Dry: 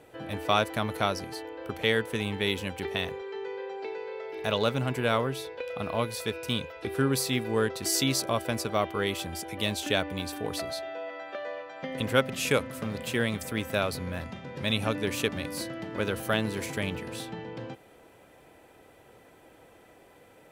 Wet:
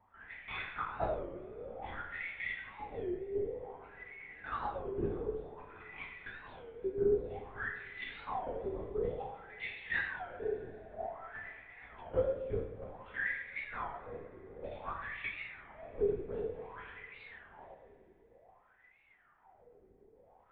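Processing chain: wah-wah 0.54 Hz 360–2200 Hz, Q 16; LPC vocoder at 8 kHz whisper; reverberation, pre-delay 3 ms, DRR -1.5 dB; warped record 33 1/3 rpm, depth 160 cents; trim +2 dB

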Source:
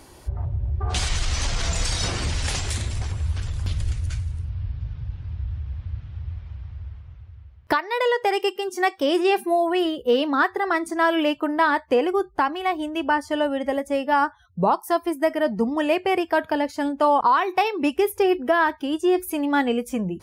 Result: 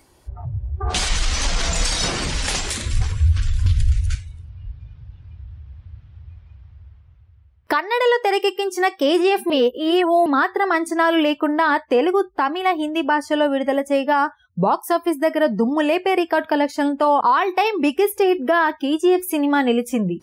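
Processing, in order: spectral noise reduction 13 dB; 2.83–4.15 s: resonant low shelf 140 Hz +9 dB, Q 1.5; 9.50–10.26 s: reverse; peak limiter -14 dBFS, peak gain reduction 7 dB; trim +5 dB

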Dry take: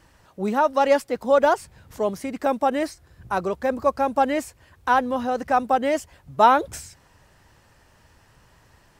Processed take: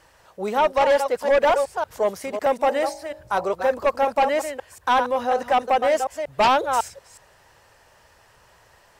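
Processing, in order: chunks repeated in reverse 184 ms, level -9 dB; resonant low shelf 370 Hz -8 dB, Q 1.5; 2.61–3.45 s: de-hum 51.36 Hz, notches 20; in parallel at -10 dB: sine folder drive 12 dB, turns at -2 dBFS; on the sum: trim -7 dB

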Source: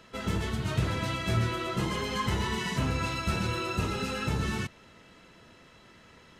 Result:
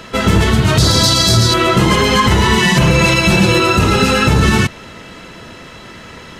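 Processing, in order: 0.78–1.54 s: resonant high shelf 3.4 kHz +10 dB, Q 3; 2.62–3.60 s: comb 5.7 ms, depth 82%; loudness maximiser +21.5 dB; trim -1 dB

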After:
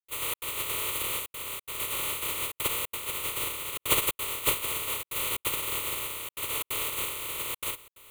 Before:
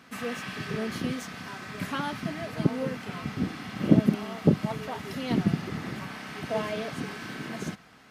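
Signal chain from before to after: spectral contrast reduction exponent 0.11; static phaser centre 1.1 kHz, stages 8; trance gate ".xxx.xxxxxxxxxx" 179 bpm -60 dB; in parallel at +1 dB: compressor with a negative ratio -36 dBFS, ratio -0.5; on the sum: trim -2.5 dB

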